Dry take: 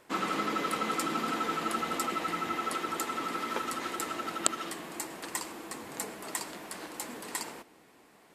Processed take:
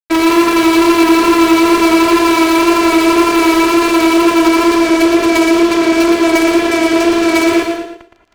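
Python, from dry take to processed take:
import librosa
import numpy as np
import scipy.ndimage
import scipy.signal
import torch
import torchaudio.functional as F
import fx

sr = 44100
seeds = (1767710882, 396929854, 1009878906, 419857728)

p1 = fx.high_shelf(x, sr, hz=3200.0, db=-4.5)
p2 = fx.rider(p1, sr, range_db=5, speed_s=0.5)
p3 = p1 + F.gain(torch.from_numpy(p2), -3.0).numpy()
p4 = fx.vocoder(p3, sr, bands=8, carrier='saw', carrier_hz=333.0)
p5 = fx.wow_flutter(p4, sr, seeds[0], rate_hz=2.1, depth_cents=40.0)
p6 = fx.small_body(p5, sr, hz=(460.0, 2300.0), ring_ms=30, db=17)
p7 = fx.fuzz(p6, sr, gain_db=36.0, gate_db=-40.0)
p8 = p7 + fx.echo_feedback(p7, sr, ms=116, feedback_pct=24, wet_db=-6.0, dry=0)
p9 = fx.rev_gated(p8, sr, seeds[1], gate_ms=240, shape='rising', drr_db=8.0)
y = F.gain(torch.from_numpy(p9), 3.5).numpy()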